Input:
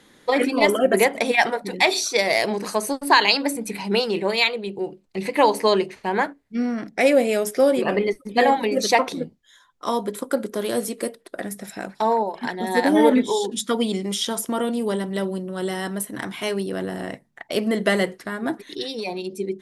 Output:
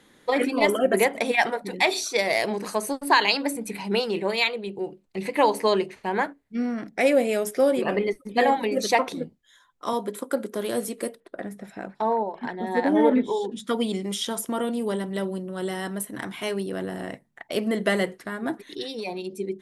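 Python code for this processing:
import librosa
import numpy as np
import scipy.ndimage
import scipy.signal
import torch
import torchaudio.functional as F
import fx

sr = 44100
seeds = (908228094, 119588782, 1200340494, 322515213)

y = fx.highpass(x, sr, hz=160.0, slope=12, at=(9.93, 10.55))
y = fx.lowpass(y, sr, hz=1800.0, slope=6, at=(11.2, 13.67))
y = fx.peak_eq(y, sr, hz=5100.0, db=-3.0, octaves=0.76)
y = F.gain(torch.from_numpy(y), -3.0).numpy()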